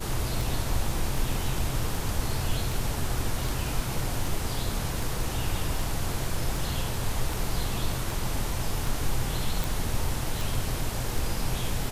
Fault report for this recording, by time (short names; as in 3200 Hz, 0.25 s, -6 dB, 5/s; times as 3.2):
tick 78 rpm
9.64 pop